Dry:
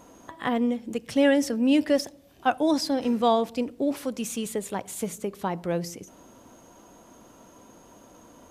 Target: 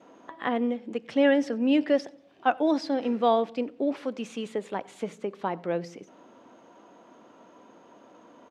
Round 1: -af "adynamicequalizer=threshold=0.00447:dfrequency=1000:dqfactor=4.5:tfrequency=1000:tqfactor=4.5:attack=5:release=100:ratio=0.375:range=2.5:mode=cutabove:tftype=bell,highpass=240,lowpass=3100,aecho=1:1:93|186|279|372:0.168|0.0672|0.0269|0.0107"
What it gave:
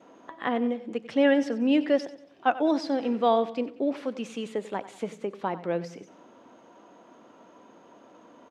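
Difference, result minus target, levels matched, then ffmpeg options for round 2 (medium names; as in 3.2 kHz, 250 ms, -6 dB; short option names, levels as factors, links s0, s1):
echo-to-direct +11 dB
-af "adynamicequalizer=threshold=0.00447:dfrequency=1000:dqfactor=4.5:tfrequency=1000:tqfactor=4.5:attack=5:release=100:ratio=0.375:range=2.5:mode=cutabove:tftype=bell,highpass=240,lowpass=3100,aecho=1:1:93|186:0.0473|0.0189"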